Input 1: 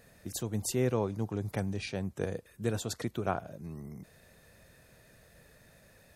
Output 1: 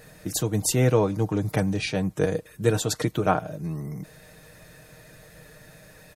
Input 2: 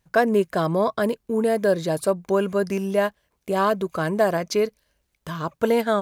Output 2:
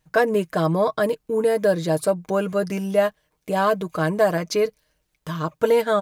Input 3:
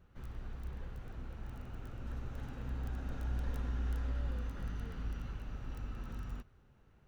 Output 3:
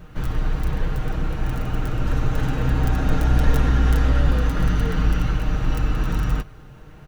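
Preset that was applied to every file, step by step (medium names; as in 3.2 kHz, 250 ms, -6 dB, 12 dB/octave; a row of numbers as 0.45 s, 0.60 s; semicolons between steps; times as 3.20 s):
comb 6.5 ms, depth 55%; peak normalisation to -6 dBFS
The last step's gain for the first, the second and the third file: +9.0 dB, 0.0 dB, +21.0 dB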